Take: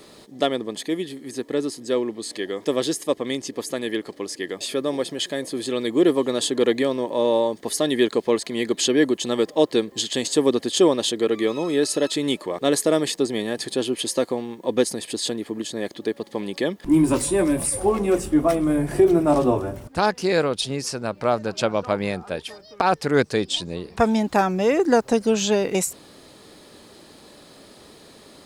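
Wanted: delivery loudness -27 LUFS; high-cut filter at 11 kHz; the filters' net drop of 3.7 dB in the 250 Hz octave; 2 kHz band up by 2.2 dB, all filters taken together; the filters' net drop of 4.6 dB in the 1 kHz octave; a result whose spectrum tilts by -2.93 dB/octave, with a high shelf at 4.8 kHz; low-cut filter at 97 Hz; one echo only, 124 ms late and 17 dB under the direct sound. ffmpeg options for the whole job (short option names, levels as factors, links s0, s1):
-af "highpass=97,lowpass=11000,equalizer=f=250:t=o:g=-4.5,equalizer=f=1000:t=o:g=-7.5,equalizer=f=2000:t=o:g=4.5,highshelf=f=4800:g=4.5,aecho=1:1:124:0.141,volume=0.708"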